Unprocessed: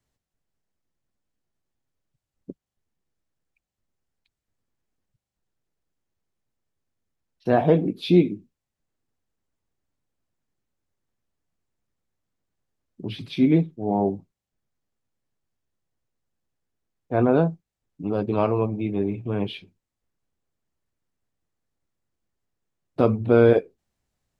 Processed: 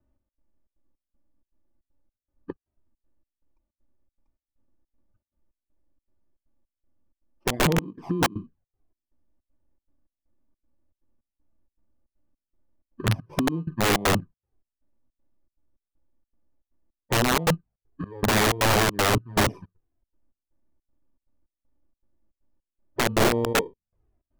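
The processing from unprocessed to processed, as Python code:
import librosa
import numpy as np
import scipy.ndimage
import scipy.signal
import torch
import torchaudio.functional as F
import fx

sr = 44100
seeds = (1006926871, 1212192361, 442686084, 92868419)

y = fx.bit_reversed(x, sr, seeds[0], block=32)
y = fx.hpss(y, sr, part='harmonic', gain_db=6)
y = fx.step_gate(y, sr, bpm=158, pattern='xxx.xxx.xx..', floor_db=-24.0, edge_ms=4.5)
y = fx.env_flanger(y, sr, rest_ms=3.4, full_db=-18.0)
y = scipy.signal.sosfilt(scipy.signal.butter(2, 1000.0, 'lowpass', fs=sr, output='sos'), y)
y = fx.over_compress(y, sr, threshold_db=-22.0, ratio=-1.0)
y = (np.mod(10.0 ** (18.5 / 20.0) * y + 1.0, 2.0) - 1.0) / 10.0 ** (18.5 / 20.0)
y = F.gain(torch.from_numpy(y), 4.0).numpy()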